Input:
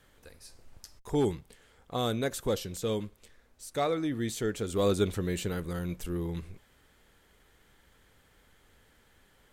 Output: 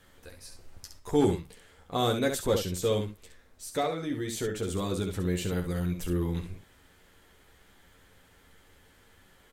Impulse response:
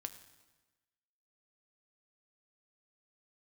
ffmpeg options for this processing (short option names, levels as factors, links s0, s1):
-filter_complex "[0:a]asettb=1/sr,asplit=3[s0][s1][s2];[s0]atrim=end=3.804[s3];[s1]atrim=start=3.8:end=6.06,asetpts=PTS-STARTPTS,afade=t=in:d=0.004:c=qsin,afade=t=out:st=2.256:d=0.004:c=qsin,acompressor=threshold=0.0224:ratio=2.5[s4];[s2]atrim=start=6.056[s5];[s3][s4]acrossfade=d=0.004:c1=hsin:c2=qsin[s6];[s6][s5]acrossfade=d=0.004:c1=qsin:c2=hsin,aecho=1:1:11|67:0.596|0.473,volume=1.26"